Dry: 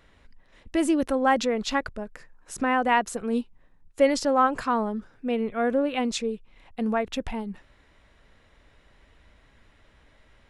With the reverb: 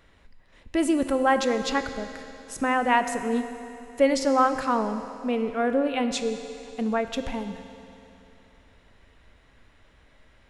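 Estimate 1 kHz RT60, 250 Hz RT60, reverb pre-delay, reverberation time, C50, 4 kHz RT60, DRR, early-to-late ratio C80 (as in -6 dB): 2.9 s, 2.9 s, 11 ms, 2.9 s, 9.0 dB, 2.9 s, 8.0 dB, 9.5 dB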